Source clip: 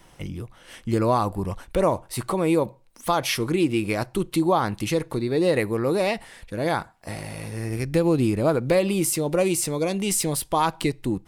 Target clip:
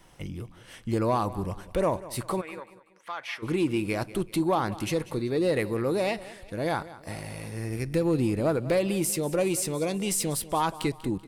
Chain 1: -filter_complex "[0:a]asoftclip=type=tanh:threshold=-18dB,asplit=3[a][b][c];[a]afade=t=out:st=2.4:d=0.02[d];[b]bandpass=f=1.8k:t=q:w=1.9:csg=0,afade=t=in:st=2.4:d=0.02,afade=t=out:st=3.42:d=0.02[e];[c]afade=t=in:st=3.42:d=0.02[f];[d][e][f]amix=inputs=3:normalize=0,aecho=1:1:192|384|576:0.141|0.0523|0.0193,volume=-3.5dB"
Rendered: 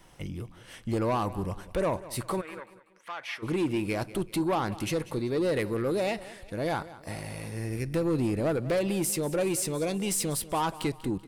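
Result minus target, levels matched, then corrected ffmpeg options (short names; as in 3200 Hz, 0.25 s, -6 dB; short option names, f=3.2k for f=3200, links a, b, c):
soft clip: distortion +10 dB
-filter_complex "[0:a]asoftclip=type=tanh:threshold=-11dB,asplit=3[a][b][c];[a]afade=t=out:st=2.4:d=0.02[d];[b]bandpass=f=1.8k:t=q:w=1.9:csg=0,afade=t=in:st=2.4:d=0.02,afade=t=out:st=3.42:d=0.02[e];[c]afade=t=in:st=3.42:d=0.02[f];[d][e][f]amix=inputs=3:normalize=0,aecho=1:1:192|384|576:0.141|0.0523|0.0193,volume=-3.5dB"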